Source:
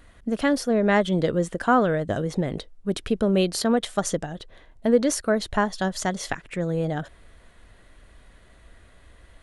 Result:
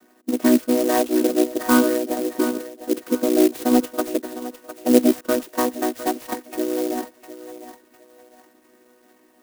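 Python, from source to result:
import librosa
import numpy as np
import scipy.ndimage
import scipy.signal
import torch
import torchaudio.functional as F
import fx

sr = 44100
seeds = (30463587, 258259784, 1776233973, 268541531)

y = fx.chord_vocoder(x, sr, chord='major triad', root=59)
y = fx.echo_thinned(y, sr, ms=705, feedback_pct=39, hz=550.0, wet_db=-10.0)
y = fx.clock_jitter(y, sr, seeds[0], jitter_ms=0.074)
y = y * 10.0 ** (4.0 / 20.0)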